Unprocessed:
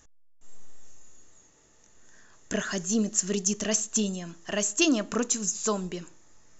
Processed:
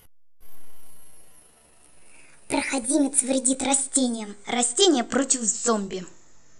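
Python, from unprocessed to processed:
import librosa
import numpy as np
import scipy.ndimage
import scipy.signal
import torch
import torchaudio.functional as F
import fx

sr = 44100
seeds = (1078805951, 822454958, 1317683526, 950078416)

y = fx.pitch_glide(x, sr, semitones=9.5, runs='ending unshifted')
y = y * 10.0 ** (6.0 / 20.0)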